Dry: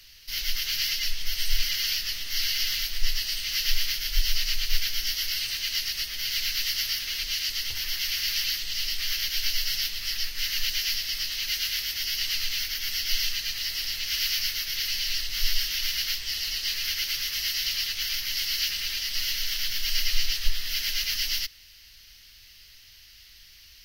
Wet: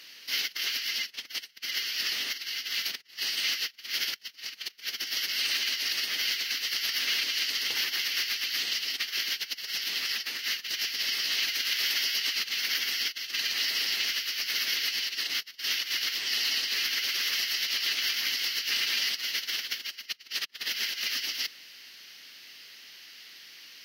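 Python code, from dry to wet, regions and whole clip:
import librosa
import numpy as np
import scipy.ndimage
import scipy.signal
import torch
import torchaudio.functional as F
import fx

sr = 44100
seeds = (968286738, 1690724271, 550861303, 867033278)

y = fx.chain(x, sr, fx.low_shelf(hz=140.0, db=-10.5),
    fx.over_compress(threshold_db=-31.0, ratio=-0.5), at=(11.73, 12.4))
y = fx.over_compress(y, sr, threshold_db=-30.0, ratio=-0.5)
y = scipy.signal.sosfilt(scipy.signal.butter(4, 220.0, 'highpass', fs=sr, output='sos'), y)
y = fx.high_shelf(y, sr, hz=3700.0, db=-11.0)
y = y * librosa.db_to_amplitude(5.5)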